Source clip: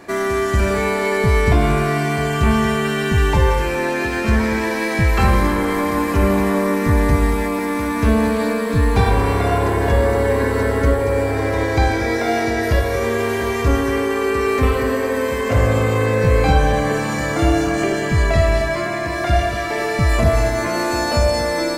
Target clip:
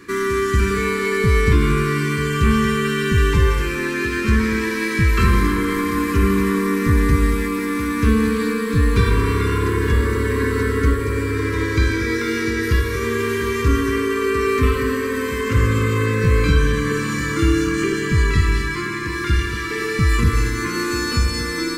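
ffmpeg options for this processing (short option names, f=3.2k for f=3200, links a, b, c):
-af "asuperstop=centerf=690:order=8:qfactor=1.2"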